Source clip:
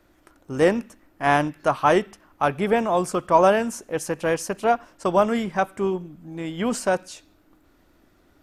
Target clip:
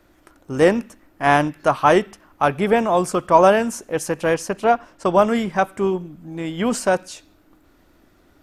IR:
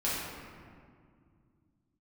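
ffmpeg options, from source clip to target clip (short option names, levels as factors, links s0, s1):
-filter_complex "[0:a]asettb=1/sr,asplit=3[s0][s1][s2];[s0]atrim=end=4.344[s3];[s1]atrim=start=4.34:end=5.19,asetpts=PTS-STARTPTS,afade=t=in:d=0.004:c=qsin,afade=t=out:st=0.846:d=0.004:c=qsin,highshelf=f=7000:g=-6.5[s4];[s2]atrim=start=5.186[s5];[s3][s4]acrossfade=d=0.004:c1=hsin:c2=qsin[s6];[s6][s5]acrossfade=d=0.004:c1=qsin:c2=hsin,volume=1.5"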